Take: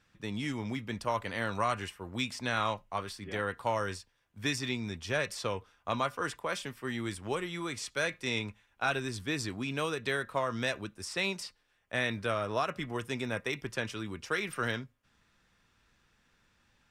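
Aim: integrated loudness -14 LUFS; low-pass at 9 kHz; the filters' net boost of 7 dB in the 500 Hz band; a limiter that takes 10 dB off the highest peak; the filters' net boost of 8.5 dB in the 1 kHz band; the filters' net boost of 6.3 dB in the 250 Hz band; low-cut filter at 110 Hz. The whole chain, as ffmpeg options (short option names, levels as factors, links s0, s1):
-af "highpass=110,lowpass=9000,equalizer=f=250:t=o:g=6,equalizer=f=500:t=o:g=4.5,equalizer=f=1000:t=o:g=9,volume=7.94,alimiter=limit=0.841:level=0:latency=1"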